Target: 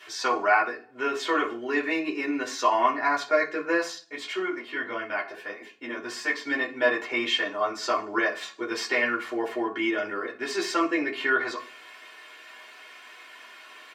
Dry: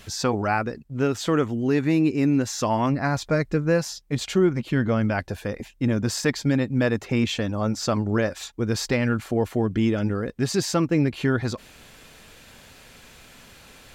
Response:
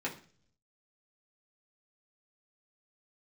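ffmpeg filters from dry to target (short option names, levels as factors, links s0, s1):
-filter_complex "[0:a]highpass=980,highshelf=f=4200:g=-11.5,aecho=1:1:2.8:0.62[s0];[1:a]atrim=start_sample=2205,asetrate=52920,aresample=44100[s1];[s0][s1]afir=irnorm=-1:irlink=0,asplit=3[s2][s3][s4];[s2]afade=t=out:st=4.03:d=0.02[s5];[s3]flanger=delay=8.3:depth=5.1:regen=-45:speed=1.6:shape=triangular,afade=t=in:st=4.03:d=0.02,afade=t=out:st=6.46:d=0.02[s6];[s4]afade=t=in:st=6.46:d=0.02[s7];[s5][s6][s7]amix=inputs=3:normalize=0,volume=1.68"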